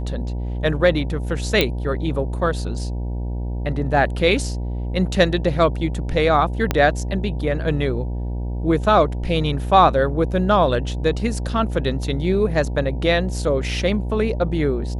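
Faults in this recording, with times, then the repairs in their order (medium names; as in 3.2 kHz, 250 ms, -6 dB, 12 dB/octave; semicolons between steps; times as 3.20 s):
buzz 60 Hz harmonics 16 -25 dBFS
1.61 s: pop -3 dBFS
6.71 s: pop -4 dBFS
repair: de-click; de-hum 60 Hz, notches 16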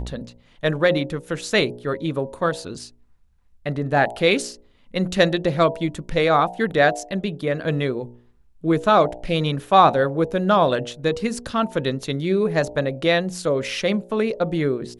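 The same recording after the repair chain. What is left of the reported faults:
6.71 s: pop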